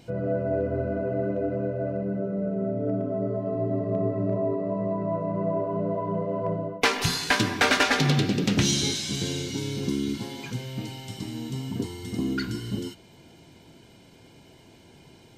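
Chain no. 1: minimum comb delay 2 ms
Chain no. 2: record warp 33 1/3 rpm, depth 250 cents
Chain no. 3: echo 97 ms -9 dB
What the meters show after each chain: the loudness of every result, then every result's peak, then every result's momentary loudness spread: -29.0, -27.0, -26.0 LUFS; -11.5, -14.0, -11.5 dBFS; 11, 11, 12 LU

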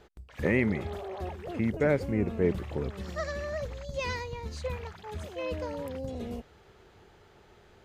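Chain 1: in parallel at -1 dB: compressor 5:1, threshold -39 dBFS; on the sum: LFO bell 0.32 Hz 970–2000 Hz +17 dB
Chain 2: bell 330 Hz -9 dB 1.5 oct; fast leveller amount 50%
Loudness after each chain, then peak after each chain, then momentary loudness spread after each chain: -27.5, -33.0 LUFS; -7.5, -16.0 dBFS; 23, 14 LU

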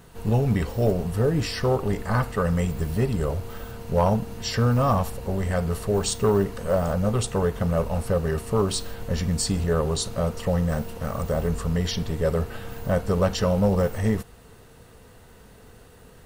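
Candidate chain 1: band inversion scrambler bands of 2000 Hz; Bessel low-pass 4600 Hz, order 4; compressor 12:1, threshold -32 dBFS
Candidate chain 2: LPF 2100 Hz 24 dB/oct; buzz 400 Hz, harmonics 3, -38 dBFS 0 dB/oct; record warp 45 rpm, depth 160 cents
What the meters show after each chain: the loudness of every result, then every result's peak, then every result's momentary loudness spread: -34.0, -25.0 LUFS; -22.5, -10.0 dBFS; 14, 16 LU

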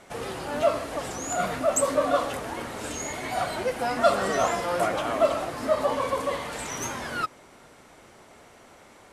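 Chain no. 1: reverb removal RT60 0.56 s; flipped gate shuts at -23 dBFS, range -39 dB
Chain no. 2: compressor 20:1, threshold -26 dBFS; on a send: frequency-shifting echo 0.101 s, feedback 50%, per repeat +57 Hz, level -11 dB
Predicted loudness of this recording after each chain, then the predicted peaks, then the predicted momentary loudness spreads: -38.0, -31.0 LUFS; -22.0, -16.5 dBFS; 18, 21 LU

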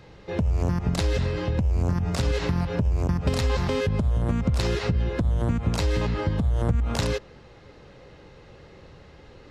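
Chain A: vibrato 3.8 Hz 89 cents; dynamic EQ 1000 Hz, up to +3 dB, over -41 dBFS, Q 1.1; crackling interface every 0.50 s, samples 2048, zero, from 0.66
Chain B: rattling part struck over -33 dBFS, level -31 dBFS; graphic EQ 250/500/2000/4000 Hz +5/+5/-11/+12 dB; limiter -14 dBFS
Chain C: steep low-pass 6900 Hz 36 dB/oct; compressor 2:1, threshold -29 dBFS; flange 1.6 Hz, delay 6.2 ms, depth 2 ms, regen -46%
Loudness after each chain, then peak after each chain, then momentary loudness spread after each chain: -25.5, -24.5, -35.5 LUFS; -10.0, -14.0, -18.5 dBFS; 2, 1, 19 LU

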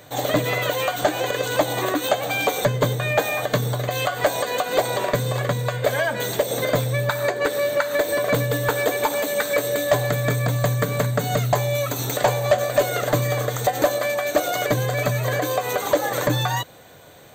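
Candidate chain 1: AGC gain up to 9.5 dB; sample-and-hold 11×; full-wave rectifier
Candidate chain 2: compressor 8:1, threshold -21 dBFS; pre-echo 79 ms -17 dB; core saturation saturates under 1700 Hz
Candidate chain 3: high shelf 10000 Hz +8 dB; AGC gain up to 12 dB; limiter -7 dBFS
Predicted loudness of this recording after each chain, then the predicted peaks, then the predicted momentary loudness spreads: -20.0, -29.0, -16.0 LUFS; -2.0, -12.0, -7.0 dBFS; 3, 5, 2 LU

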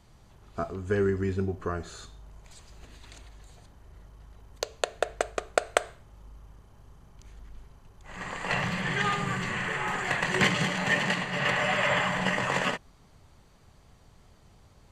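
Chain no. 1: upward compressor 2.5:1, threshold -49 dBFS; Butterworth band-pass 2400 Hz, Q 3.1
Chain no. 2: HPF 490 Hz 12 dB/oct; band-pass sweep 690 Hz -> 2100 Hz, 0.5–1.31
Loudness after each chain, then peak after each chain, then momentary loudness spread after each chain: -35.0, -32.5 LUFS; -14.5, -13.0 dBFS; 20, 20 LU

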